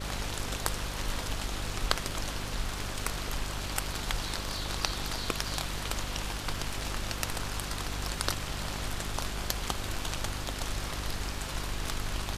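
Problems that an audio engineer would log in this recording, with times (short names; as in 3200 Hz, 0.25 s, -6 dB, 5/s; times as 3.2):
hum 50 Hz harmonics 8 -39 dBFS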